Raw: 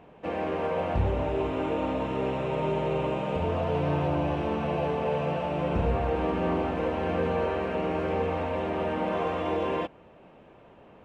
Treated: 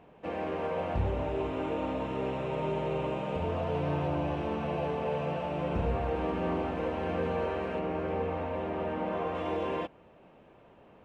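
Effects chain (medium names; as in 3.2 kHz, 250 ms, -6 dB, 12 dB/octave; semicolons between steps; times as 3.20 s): 7.79–9.35 s: treble shelf 3.7 kHz -9 dB; trim -4 dB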